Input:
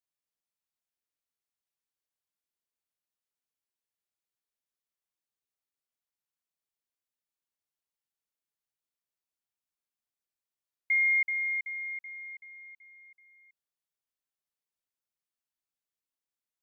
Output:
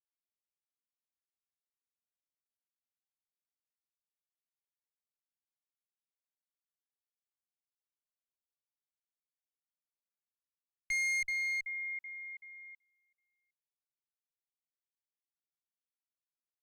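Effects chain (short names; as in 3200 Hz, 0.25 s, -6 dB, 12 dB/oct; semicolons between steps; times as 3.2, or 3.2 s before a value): gate -51 dBFS, range -22 dB; high shelf 2100 Hz -4.5 dB; one-sided clip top -34 dBFS, bottom -28.5 dBFS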